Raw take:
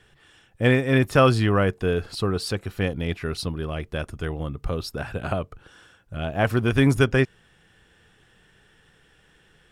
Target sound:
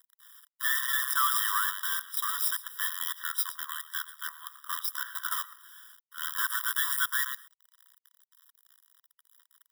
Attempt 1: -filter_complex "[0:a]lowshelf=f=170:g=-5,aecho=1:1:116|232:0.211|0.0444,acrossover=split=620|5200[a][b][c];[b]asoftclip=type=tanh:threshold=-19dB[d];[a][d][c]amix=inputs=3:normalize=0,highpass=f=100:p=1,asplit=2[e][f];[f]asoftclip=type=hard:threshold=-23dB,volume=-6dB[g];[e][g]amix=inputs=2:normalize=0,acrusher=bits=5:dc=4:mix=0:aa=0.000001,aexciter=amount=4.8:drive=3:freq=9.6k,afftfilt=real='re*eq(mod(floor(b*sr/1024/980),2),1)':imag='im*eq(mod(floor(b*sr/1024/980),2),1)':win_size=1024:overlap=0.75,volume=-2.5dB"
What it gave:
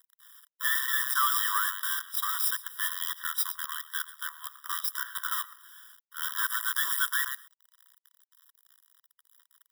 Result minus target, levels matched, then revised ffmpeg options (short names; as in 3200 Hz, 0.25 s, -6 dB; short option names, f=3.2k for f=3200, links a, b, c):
hard clip: distortion -4 dB
-filter_complex "[0:a]lowshelf=f=170:g=-5,aecho=1:1:116|232:0.211|0.0444,acrossover=split=620|5200[a][b][c];[b]asoftclip=type=tanh:threshold=-19dB[d];[a][d][c]amix=inputs=3:normalize=0,highpass=f=100:p=1,asplit=2[e][f];[f]asoftclip=type=hard:threshold=-29.5dB,volume=-6dB[g];[e][g]amix=inputs=2:normalize=0,acrusher=bits=5:dc=4:mix=0:aa=0.000001,aexciter=amount=4.8:drive=3:freq=9.6k,afftfilt=real='re*eq(mod(floor(b*sr/1024/980),2),1)':imag='im*eq(mod(floor(b*sr/1024/980),2),1)':win_size=1024:overlap=0.75,volume=-2.5dB"